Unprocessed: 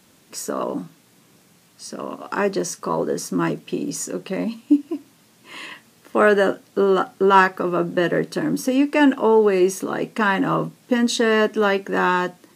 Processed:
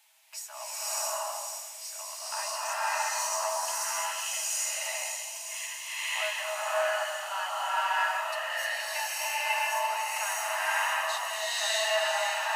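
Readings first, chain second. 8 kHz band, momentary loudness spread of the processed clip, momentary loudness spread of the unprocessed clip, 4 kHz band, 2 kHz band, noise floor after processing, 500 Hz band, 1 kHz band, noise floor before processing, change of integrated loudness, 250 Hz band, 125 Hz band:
+3.0 dB, 8 LU, 16 LU, +0.5 dB, −5.0 dB, −42 dBFS, −15.5 dB, −7.0 dB, −56 dBFS, −9.5 dB, below −40 dB, below −40 dB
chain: high-shelf EQ 6,700 Hz +10.5 dB
downward compressor 3 to 1, threshold −25 dBFS, peak gain reduction 12.5 dB
flanger 0.19 Hz, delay 7 ms, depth 6 ms, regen +43%
Chebyshev high-pass with heavy ripple 620 Hz, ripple 9 dB
on a send: delay with a high-pass on its return 508 ms, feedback 74%, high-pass 4,400 Hz, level −5.5 dB
on the sum: slow-attack reverb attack 640 ms, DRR −11.5 dB

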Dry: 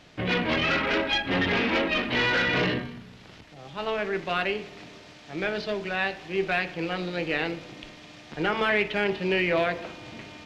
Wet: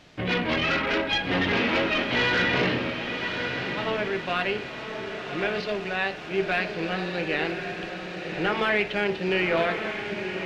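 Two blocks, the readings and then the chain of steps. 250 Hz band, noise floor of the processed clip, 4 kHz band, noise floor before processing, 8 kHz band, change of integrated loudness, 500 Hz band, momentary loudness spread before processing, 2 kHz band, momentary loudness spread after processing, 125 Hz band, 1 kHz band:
+1.0 dB, −36 dBFS, +1.0 dB, −49 dBFS, can't be measured, 0.0 dB, +1.0 dB, 18 LU, +1.0 dB, 9 LU, +1.0 dB, +1.0 dB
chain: feedback delay with all-pass diffusion 1,095 ms, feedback 45%, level −6 dB

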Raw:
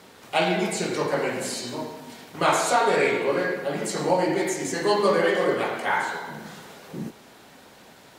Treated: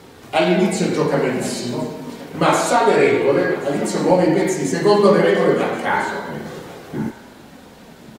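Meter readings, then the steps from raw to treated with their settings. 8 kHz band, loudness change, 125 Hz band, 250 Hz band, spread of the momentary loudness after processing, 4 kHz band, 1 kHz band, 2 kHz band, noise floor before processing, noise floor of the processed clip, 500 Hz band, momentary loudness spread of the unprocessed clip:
+3.0 dB, +6.5 dB, +10.5 dB, +10.0 dB, 15 LU, +3.0 dB, +4.5 dB, +3.5 dB, −50 dBFS, −43 dBFS, +7.5 dB, 17 LU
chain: low-shelf EQ 370 Hz +11 dB
flanger 0.3 Hz, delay 2.3 ms, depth 2.9 ms, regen −53%
single-tap delay 1,077 ms −19.5 dB
level +7 dB

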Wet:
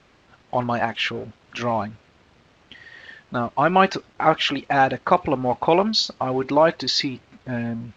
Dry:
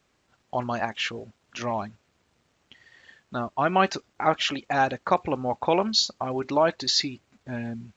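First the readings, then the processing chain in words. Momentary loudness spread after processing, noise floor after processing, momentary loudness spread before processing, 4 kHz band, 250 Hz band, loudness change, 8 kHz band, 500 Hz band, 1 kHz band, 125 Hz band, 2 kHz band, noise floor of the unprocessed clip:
13 LU, −57 dBFS, 12 LU, +2.5 dB, +5.5 dB, +4.5 dB, can't be measured, +5.0 dB, +5.0 dB, +5.5 dB, +5.0 dB, −70 dBFS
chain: mu-law and A-law mismatch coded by mu
low-pass filter 4,200 Hz 12 dB per octave
level +4.5 dB

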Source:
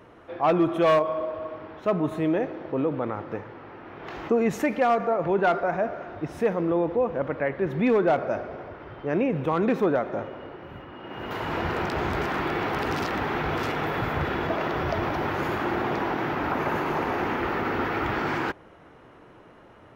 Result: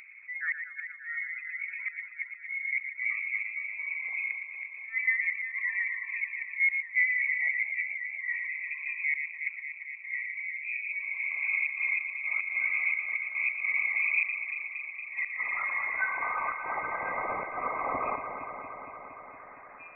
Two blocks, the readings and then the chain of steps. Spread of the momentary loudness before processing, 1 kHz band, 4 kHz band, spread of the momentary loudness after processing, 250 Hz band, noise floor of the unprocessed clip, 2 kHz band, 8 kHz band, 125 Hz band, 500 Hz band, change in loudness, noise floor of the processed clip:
15 LU, −10.0 dB, below −35 dB, 12 LU, below −25 dB, −51 dBFS, +5.5 dB, can't be measured, below −25 dB, below −20 dB, −4.0 dB, −48 dBFS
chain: spectral envelope exaggerated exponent 2
noise reduction from a noise print of the clip's start 28 dB
low shelf with overshoot 100 Hz +13.5 dB, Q 1.5
band-pass filter sweep 250 Hz → 1,900 Hz, 0:14.34–0:16.67
upward compression, threshold −36 dBFS
gate with flip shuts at −26 dBFS, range −37 dB
harmonic and percussive parts rebalanced harmonic +6 dB
delay that swaps between a low-pass and a high-pass 116 ms, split 1,000 Hz, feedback 88%, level −7 dB
voice inversion scrambler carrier 2,500 Hz
level +3 dB

